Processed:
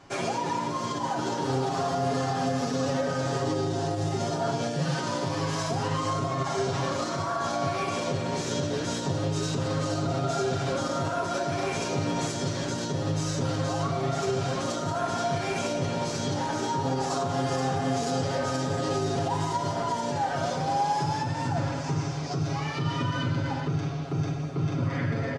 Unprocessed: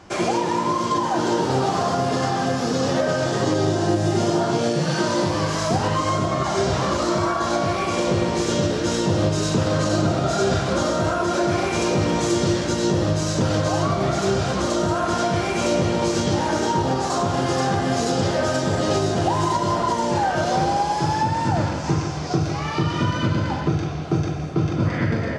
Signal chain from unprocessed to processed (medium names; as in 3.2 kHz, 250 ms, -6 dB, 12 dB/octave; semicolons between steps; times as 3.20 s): peak limiter -14 dBFS, peak gain reduction 6 dB; comb 7.3 ms, depth 86%; trim -7.5 dB